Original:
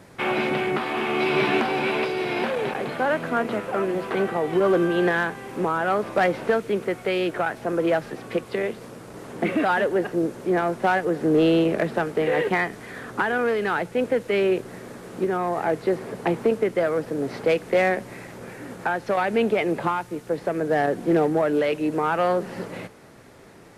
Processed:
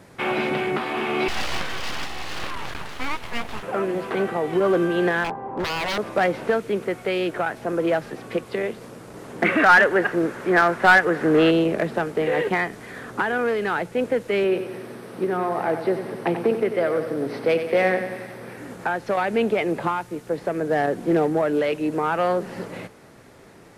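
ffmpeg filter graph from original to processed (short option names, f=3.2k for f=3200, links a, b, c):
-filter_complex "[0:a]asettb=1/sr,asplit=3[a][b][c];[a]atrim=end=1.284[d];[b]atrim=start=1.28:end=3.63,asetpts=PTS-STARTPTS,afade=t=in:d=0.004:c=qsin,afade=t=out:st=2.346:d=0.004:c=qsin,lowshelf=f=400:g=-8.5,aeval=exprs='abs(val(0))':c=same[e];[c]atrim=start=3.626[f];[d][e]acrossfade=d=0.004:c1=hsin:c2=qsin[g];[g][f]acrossfade=d=0.004:c1=qsin:c2=hsin,asettb=1/sr,asplit=3[h][i][j];[h]atrim=end=5.244[k];[i]atrim=start=5.24:end=5.98,asetpts=PTS-STARTPTS,afade=t=in:d=0.004:c=qsin,afade=t=out:st=0.736:d=0.004:c=qsin,lowpass=f=880:t=q:w=3.6,aeval=exprs='0.0944*(abs(mod(val(0)/0.0944+3,4)-2)-1)':c=same[l];[j]atrim=start=5.976[m];[k][l]acrossfade=d=0.004:c1=hsin:c2=qsin[n];[n][m]acrossfade=d=0.004:c1=qsin:c2=hsin,asettb=1/sr,asplit=3[o][p][q];[o]atrim=end=9.424[r];[p]atrim=start=9.42:end=11.51,asetpts=PTS-STARTPTS,afade=t=in:d=0.004:c=qsin,afade=t=out:st=2.086:d=0.004:c=qsin,equalizer=f=1.6k:w=0.85:g=13,aeval=exprs='clip(val(0),-1,0.355)':c=same[s];[q]atrim=start=11.506[t];[r][s]acrossfade=d=0.004:c1=hsin:c2=qsin[u];[u][t]acrossfade=d=0.004:c1=qsin:c2=hsin,asettb=1/sr,asplit=3[v][w][x];[v]atrim=end=14.444[y];[w]atrim=start=14.44:end=18.58,asetpts=PTS-STARTPTS,afade=t=in:d=0.004:c=qsin,afade=t=out:st=4.136:d=0.004:c=qsin,highpass=130,equalizer=f=7k:t=o:w=0.24:g=-12.5,aecho=1:1:92|184|276|368|460|552|644:0.355|0.202|0.115|0.0657|0.0375|0.0213|0.0122,atrim=end_sample=182574[z];[x]atrim=start=18.576[aa];[y][z]acrossfade=d=0.004:c1=hsin:c2=qsin[ab];[ab][aa]acrossfade=d=0.004:c1=qsin:c2=hsin"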